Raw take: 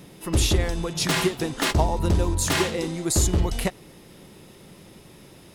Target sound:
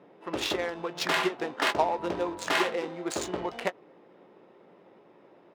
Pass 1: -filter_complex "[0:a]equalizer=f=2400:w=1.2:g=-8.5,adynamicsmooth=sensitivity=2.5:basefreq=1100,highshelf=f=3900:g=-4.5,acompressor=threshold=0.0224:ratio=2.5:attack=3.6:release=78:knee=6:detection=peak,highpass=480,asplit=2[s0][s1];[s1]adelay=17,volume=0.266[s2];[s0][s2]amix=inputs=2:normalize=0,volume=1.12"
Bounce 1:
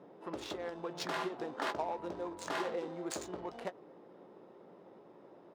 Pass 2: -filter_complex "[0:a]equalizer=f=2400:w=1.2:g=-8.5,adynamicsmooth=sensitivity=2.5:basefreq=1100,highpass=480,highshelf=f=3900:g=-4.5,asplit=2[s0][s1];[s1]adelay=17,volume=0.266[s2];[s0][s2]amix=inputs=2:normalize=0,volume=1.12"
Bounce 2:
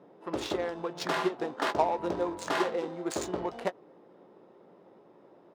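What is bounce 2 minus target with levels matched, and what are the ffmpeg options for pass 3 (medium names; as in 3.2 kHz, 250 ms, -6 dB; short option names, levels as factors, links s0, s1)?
2 kHz band -4.0 dB
-filter_complex "[0:a]adynamicsmooth=sensitivity=2.5:basefreq=1100,highpass=480,highshelf=f=3900:g=-4.5,asplit=2[s0][s1];[s1]adelay=17,volume=0.266[s2];[s0][s2]amix=inputs=2:normalize=0,volume=1.12"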